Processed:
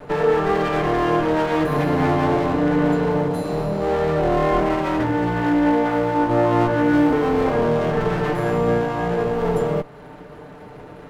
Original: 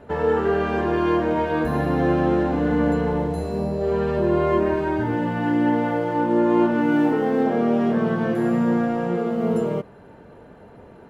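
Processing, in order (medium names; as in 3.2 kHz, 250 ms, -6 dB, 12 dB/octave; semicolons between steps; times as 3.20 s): comb filter that takes the minimum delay 6.7 ms; in parallel at 0 dB: compression, threshold -33 dBFS, peak gain reduction 16 dB; on the sum: trim +1.5 dB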